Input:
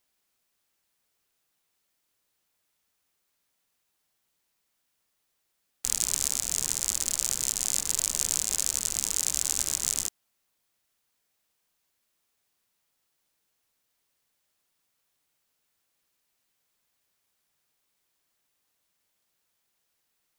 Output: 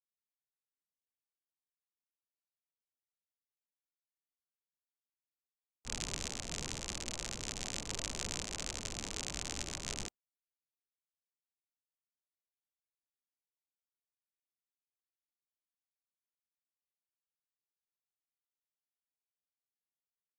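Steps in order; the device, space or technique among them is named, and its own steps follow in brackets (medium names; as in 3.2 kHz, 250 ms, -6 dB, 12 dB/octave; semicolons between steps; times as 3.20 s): local Wiener filter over 25 samples; hearing-loss simulation (low-pass 2.8 kHz 12 dB/octave; expander -40 dBFS); trim +3.5 dB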